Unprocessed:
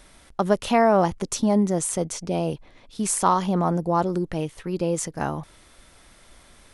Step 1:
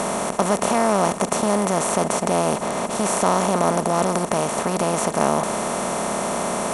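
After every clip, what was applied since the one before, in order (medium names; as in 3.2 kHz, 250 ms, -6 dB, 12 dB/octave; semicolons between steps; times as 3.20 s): spectral levelling over time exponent 0.2; high-pass 82 Hz 6 dB/octave; trim -5.5 dB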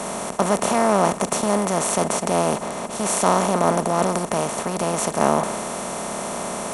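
word length cut 12-bit, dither none; three bands expanded up and down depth 70%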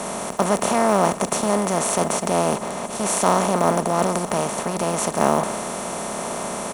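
block-companded coder 7-bit; delay 1026 ms -18.5 dB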